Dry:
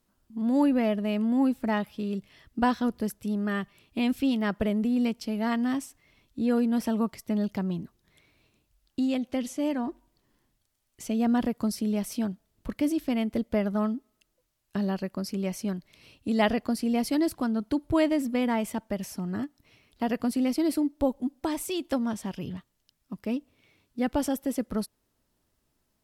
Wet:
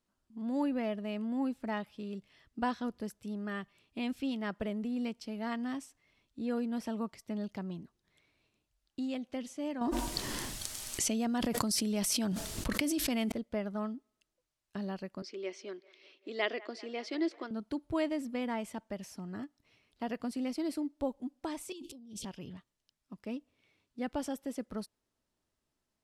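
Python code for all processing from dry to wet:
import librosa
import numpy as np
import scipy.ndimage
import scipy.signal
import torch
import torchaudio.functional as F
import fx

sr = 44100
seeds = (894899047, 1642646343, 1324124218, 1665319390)

y = fx.chain(x, sr, fx.high_shelf(hz=3800.0, db=10.5),
    fx.env_flatten(amount_pct=100), at=(9.81, 13.32))
y = fx.chain(y, sr, fx.cabinet(low_hz=330.0, low_slope=24, high_hz=6100.0, hz=(360.0, 810.0, 2100.0, 3400.0), db=(10, -7, 6, 5)),
    fx.echo_wet_bandpass(ms=195, feedback_pct=70, hz=1100.0, wet_db=-18.5), at=(15.22, 17.51))
y = fx.chain(y, sr, fx.cheby2_bandstop(low_hz=710.0, high_hz=1800.0, order=4, stop_db=40),
    fx.over_compress(threshold_db=-35.0, ratio=-0.5),
    fx.transient(attack_db=-4, sustain_db=11), at=(21.72, 22.25))
y = scipy.signal.sosfilt(scipy.signal.butter(2, 9400.0, 'lowpass', fs=sr, output='sos'), y)
y = fx.low_shelf(y, sr, hz=250.0, db=-4.5)
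y = y * 10.0 ** (-7.5 / 20.0)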